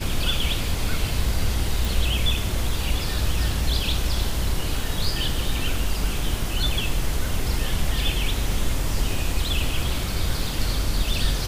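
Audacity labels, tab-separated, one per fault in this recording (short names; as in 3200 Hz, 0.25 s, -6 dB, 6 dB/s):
1.850000	1.850000	pop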